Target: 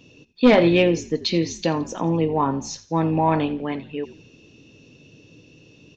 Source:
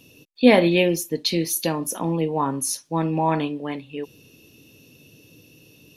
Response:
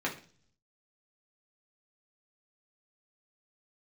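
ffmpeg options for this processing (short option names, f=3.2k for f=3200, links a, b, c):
-filter_complex "[0:a]lowpass=f=3.5k:p=1,aresample=16000,aeval=exprs='0.75*sin(PI/2*1.41*val(0)/0.75)':c=same,aresample=44100,asplit=4[a][b][c][d];[b]adelay=85,afreqshift=-59,volume=-17dB[e];[c]adelay=170,afreqshift=-118,volume=-25dB[f];[d]adelay=255,afreqshift=-177,volume=-32.9dB[g];[a][e][f][g]amix=inputs=4:normalize=0,volume=-4.5dB"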